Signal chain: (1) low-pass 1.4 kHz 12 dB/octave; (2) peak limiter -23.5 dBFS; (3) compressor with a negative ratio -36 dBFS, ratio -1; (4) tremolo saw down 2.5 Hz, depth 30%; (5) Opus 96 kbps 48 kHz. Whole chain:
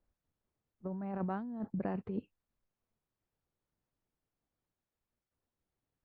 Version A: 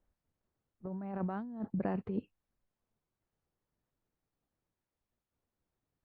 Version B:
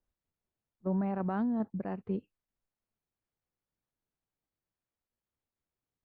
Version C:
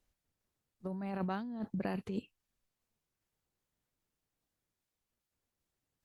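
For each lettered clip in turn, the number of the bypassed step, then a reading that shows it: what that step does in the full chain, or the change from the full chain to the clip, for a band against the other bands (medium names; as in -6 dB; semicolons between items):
2, mean gain reduction 2.0 dB; 3, crest factor change -4.0 dB; 1, 2 kHz band +5.0 dB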